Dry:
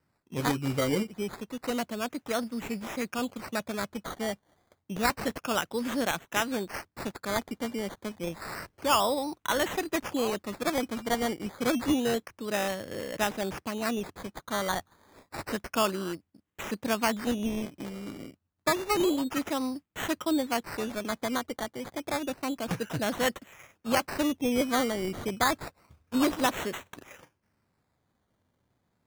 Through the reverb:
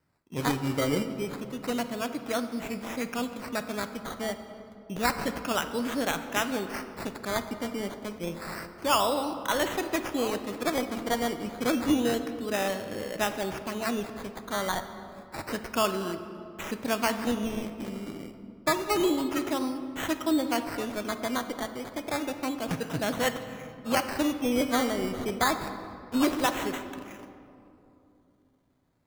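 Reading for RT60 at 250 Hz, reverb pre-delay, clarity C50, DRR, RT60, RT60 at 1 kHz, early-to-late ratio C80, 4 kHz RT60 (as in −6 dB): 3.4 s, 3 ms, 9.5 dB, 8.0 dB, 2.8 s, 2.6 s, 10.5 dB, 1.5 s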